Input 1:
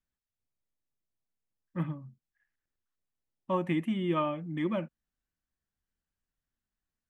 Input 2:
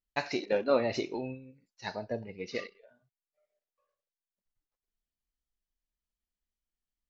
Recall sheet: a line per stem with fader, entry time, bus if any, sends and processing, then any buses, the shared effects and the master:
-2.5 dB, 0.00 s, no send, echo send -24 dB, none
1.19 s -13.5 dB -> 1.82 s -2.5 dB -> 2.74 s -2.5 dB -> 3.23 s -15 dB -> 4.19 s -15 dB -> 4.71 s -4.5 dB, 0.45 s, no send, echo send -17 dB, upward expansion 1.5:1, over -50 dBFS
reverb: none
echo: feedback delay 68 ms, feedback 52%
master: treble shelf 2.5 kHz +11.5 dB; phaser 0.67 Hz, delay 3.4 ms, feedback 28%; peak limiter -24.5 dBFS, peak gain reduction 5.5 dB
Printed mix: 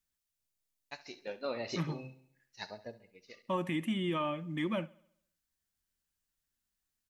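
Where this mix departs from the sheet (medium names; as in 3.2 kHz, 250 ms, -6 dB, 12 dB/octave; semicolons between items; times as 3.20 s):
stem 2: entry 0.45 s -> 0.75 s; master: missing phaser 0.67 Hz, delay 3.4 ms, feedback 28%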